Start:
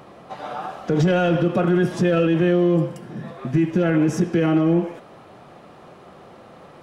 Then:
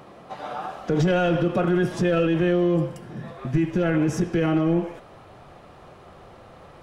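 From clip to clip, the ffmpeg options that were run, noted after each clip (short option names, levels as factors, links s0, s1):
-af "asubboost=boost=5.5:cutoff=84,volume=0.841"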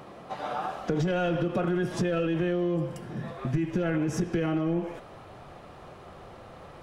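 -af "acompressor=threshold=0.0631:ratio=5"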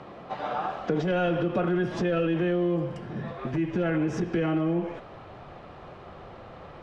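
-filter_complex "[0:a]lowpass=4100,acrossover=split=160|2400[s0][s1][s2];[s0]aeval=exprs='0.0141*(abs(mod(val(0)/0.0141+3,4)-2)-1)':c=same[s3];[s3][s1][s2]amix=inputs=3:normalize=0,volume=1.26"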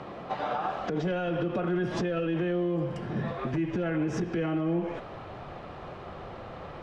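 -af "alimiter=limit=0.0631:level=0:latency=1:release=199,volume=1.41"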